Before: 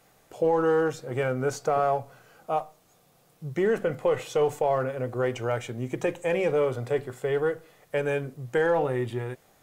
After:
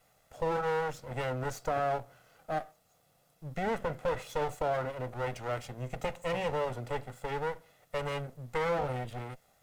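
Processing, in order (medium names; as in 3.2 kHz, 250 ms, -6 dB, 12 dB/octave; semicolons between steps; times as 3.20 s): comb filter that takes the minimum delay 1.5 ms; trim -5.5 dB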